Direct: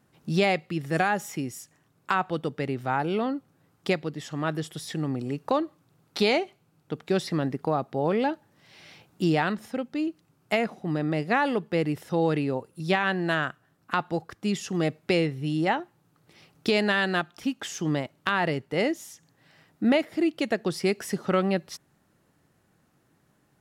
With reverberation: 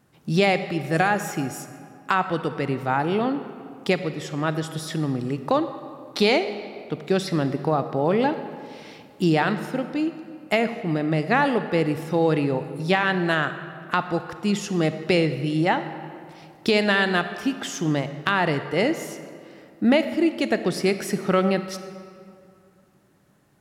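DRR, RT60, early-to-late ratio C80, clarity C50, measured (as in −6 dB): 10.0 dB, 2.4 s, 11.5 dB, 10.5 dB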